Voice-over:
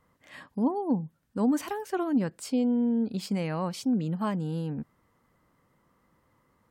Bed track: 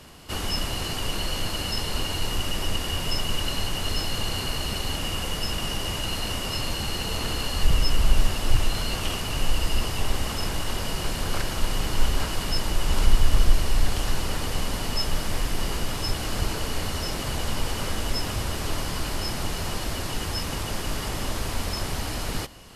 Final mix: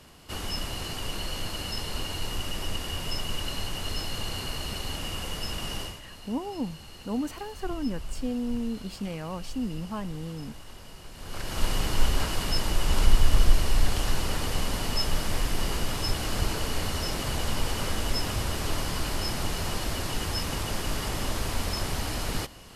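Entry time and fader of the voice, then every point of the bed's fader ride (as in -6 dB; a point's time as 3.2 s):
5.70 s, -5.0 dB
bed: 5.82 s -5 dB
6.02 s -17.5 dB
11.11 s -17.5 dB
11.62 s -1 dB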